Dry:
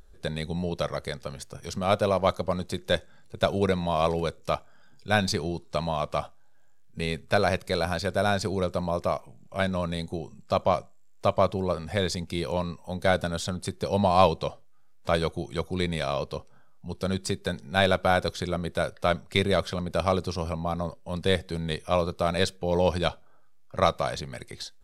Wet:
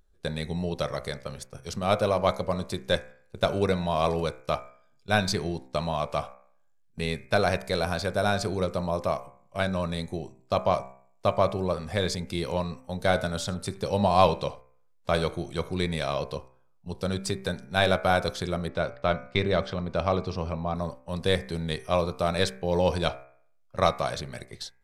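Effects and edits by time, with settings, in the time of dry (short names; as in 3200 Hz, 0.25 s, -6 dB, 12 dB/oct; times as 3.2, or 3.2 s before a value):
13.03–15.77 echo 78 ms -21.5 dB
18.68–20.75 air absorption 130 m
whole clip: gate -40 dBFS, range -12 dB; de-hum 64.59 Hz, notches 39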